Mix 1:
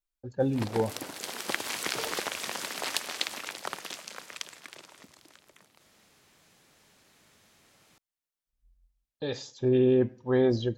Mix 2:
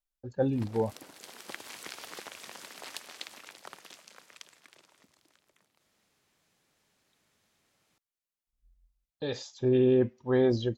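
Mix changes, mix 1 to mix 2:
first sound -11.0 dB; second sound: muted; reverb: off

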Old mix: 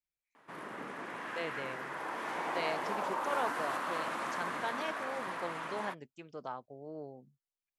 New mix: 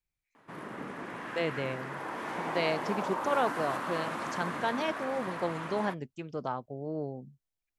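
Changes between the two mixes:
speech +5.5 dB; master: add bass shelf 260 Hz +11 dB

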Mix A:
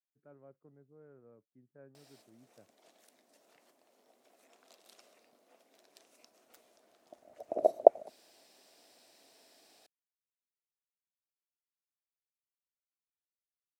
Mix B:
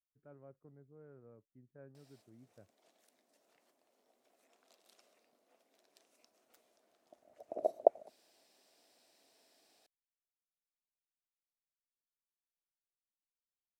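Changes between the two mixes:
speech: remove high-pass 150 Hz; background -7.0 dB

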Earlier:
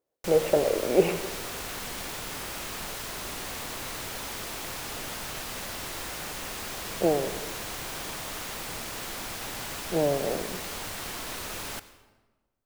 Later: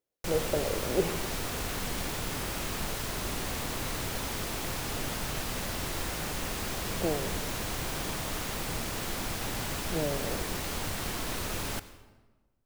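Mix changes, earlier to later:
speech -10.5 dB; master: add bass shelf 320 Hz +9 dB

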